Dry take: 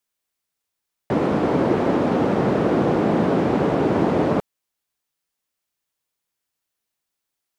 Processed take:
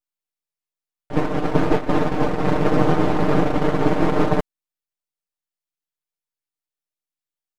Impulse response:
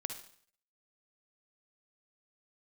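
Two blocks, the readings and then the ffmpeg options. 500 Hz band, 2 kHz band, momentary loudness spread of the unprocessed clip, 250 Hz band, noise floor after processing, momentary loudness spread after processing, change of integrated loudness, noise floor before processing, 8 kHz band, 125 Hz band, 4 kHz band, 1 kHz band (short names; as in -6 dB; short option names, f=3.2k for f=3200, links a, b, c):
-1.5 dB, +2.0 dB, 3 LU, -1.0 dB, under -85 dBFS, 5 LU, -0.5 dB, -82 dBFS, n/a, +1.5 dB, +2.0 dB, +1.0 dB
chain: -af "aeval=exprs='max(val(0),0)':c=same,aecho=1:1:6.6:0.73,agate=range=-15dB:threshold=-18dB:ratio=16:detection=peak,volume=4.5dB"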